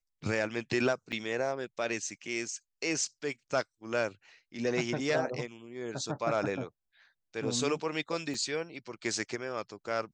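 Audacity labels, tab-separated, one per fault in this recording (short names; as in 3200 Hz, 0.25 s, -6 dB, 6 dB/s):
1.120000	1.130000	gap 6.2 ms
8.340000	8.340000	gap 2.3 ms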